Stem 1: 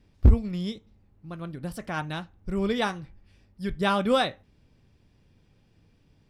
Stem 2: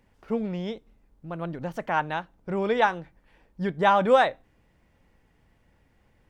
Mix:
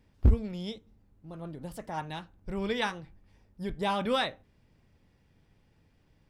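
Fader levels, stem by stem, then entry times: -5.0, -7.5 dB; 0.00, 0.00 s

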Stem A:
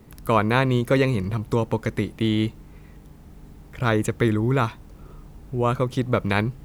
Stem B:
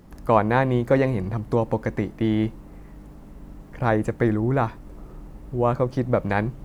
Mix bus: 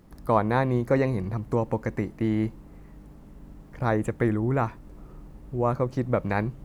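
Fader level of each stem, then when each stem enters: -14.5, -5.5 dB; 0.00, 0.00 s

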